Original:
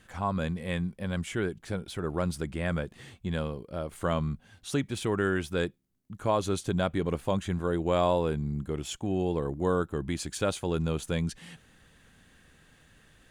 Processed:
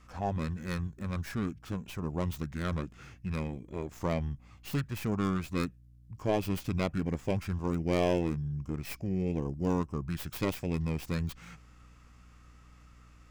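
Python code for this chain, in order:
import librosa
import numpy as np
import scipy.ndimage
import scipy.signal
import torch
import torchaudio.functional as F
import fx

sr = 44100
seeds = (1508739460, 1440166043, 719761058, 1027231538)

y = fx.tracing_dist(x, sr, depth_ms=0.17)
y = fx.add_hum(y, sr, base_hz=60, snr_db=23)
y = fx.formant_shift(y, sr, semitones=-5)
y = y * 10.0 ** (-2.5 / 20.0)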